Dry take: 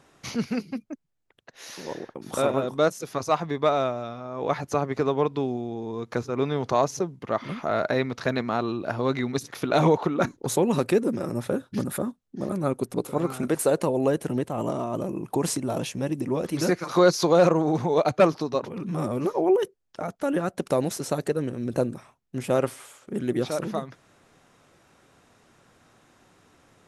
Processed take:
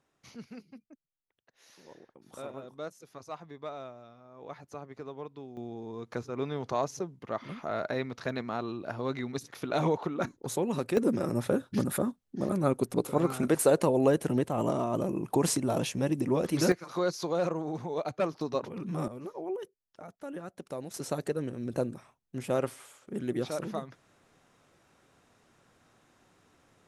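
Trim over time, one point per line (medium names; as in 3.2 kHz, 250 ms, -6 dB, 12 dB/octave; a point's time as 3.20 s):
-18 dB
from 5.57 s -8 dB
from 10.97 s -1 dB
from 16.72 s -11.5 dB
from 18.41 s -5 dB
from 19.08 s -15 dB
from 20.94 s -6 dB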